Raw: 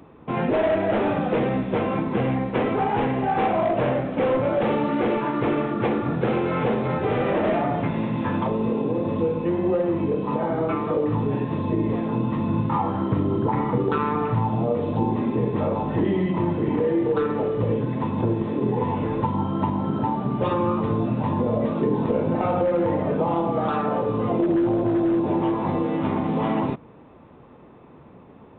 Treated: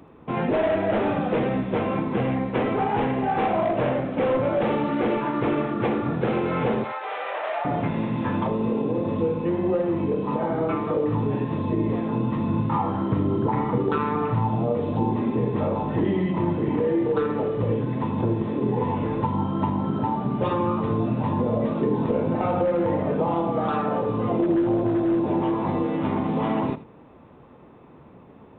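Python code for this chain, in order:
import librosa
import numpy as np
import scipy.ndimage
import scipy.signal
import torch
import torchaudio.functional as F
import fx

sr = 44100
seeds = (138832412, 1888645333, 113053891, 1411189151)

y = fx.highpass(x, sr, hz=670.0, slope=24, at=(6.84, 7.65))
y = y + 10.0 ** (-15.5 / 20.0) * np.pad(y, (int(81 * sr / 1000.0), 0))[:len(y)]
y = y * librosa.db_to_amplitude(-1.0)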